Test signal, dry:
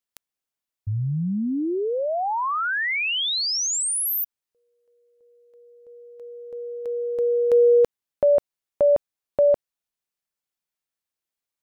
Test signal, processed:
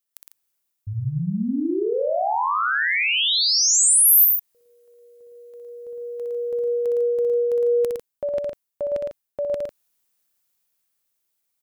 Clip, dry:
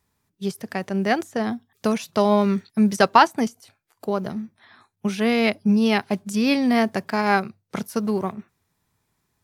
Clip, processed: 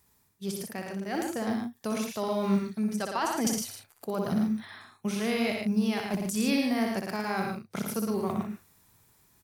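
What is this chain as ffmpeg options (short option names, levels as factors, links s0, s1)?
-af "areverse,acompressor=threshold=0.0355:ratio=20:attack=0.34:release=533:knee=6:detection=rms,areverse,highshelf=f=7800:g=11.5,aecho=1:1:61.22|110.8|148.7:0.562|0.562|0.316,dynaudnorm=f=310:g=9:m=1.58,aeval=exprs='0.447*(cos(1*acos(clip(val(0)/0.447,-1,1)))-cos(1*PI/2))+0.00251*(cos(5*acos(clip(val(0)/0.447,-1,1)))-cos(5*PI/2))':c=same,volume=1.41"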